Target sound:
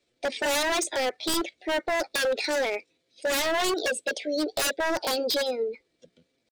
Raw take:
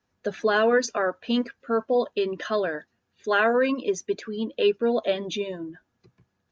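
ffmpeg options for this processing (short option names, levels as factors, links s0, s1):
-af "asetrate=60591,aresample=44100,atempo=0.727827,equalizer=f=125:t=o:w=1:g=-9,equalizer=f=500:t=o:w=1:g=10,equalizer=f=1000:t=o:w=1:g=-11,equalizer=f=4000:t=o:w=1:g=12,aeval=exprs='0.0944*(abs(mod(val(0)/0.0944+3,4)-2)-1)':c=same"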